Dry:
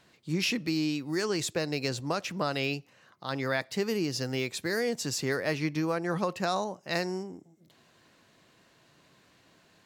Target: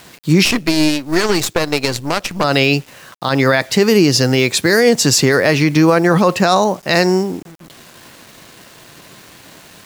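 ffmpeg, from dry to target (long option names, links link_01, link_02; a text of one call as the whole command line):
ffmpeg -i in.wav -filter_complex "[0:a]acrusher=bits=9:mix=0:aa=0.000001,asettb=1/sr,asplit=3[link_01][link_02][link_03];[link_01]atrim=end=0.454[link_04];[link_02]atrim=start=0.45:end=2.44,asetpts=PTS-STARTPTS,afade=type=in:duration=0.004:curve=qsin,afade=type=out:start_time=1.986:duration=0.004:curve=qsin,aeval=exprs='0.158*(cos(1*acos(clip(val(0)/0.158,-1,1)))-cos(1*PI/2))+0.0141*(cos(3*acos(clip(val(0)/0.158,-1,1)))-cos(3*PI/2))+0.0251*(cos(4*acos(clip(val(0)/0.158,-1,1)))-cos(4*PI/2))+0.01*(cos(7*acos(clip(val(0)/0.158,-1,1)))-cos(7*PI/2))':channel_layout=same[link_05];[link_03]atrim=start=2.436[link_06];[link_04][link_05]acrossfade=duration=0.004:curve1=hsin:curve2=qsin[link_07];[link_07][link_06]acrossfade=duration=0.004:curve1=qsin:curve2=hsin,alimiter=level_in=21dB:limit=-1dB:release=50:level=0:latency=1,volume=-1dB" out.wav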